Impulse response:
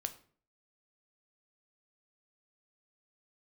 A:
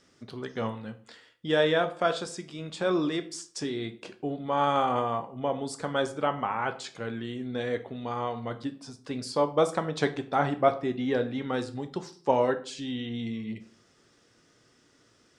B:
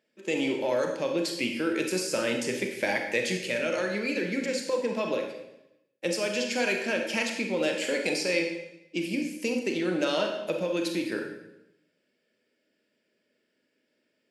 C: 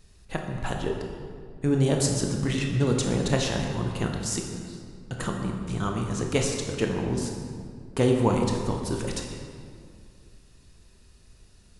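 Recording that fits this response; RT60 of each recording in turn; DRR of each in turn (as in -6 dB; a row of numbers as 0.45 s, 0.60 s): A; 0.50 s, 0.90 s, 2.2 s; 8.5 dB, 2.5 dB, 1.5 dB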